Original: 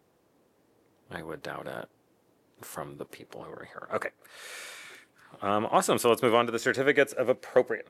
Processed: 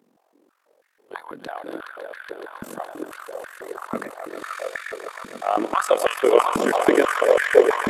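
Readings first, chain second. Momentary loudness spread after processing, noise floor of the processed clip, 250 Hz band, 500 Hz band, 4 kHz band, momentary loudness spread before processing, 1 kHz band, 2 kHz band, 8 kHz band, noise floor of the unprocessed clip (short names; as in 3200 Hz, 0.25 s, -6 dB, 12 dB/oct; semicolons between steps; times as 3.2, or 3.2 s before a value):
19 LU, -67 dBFS, +6.0 dB, +7.5 dB, +2.5 dB, 20 LU, +7.0 dB, +5.5 dB, +2.5 dB, -68 dBFS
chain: swelling echo 0.14 s, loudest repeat 5, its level -8 dB; AM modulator 45 Hz, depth 70%; stepped high-pass 6.1 Hz 230–1700 Hz; gain +2.5 dB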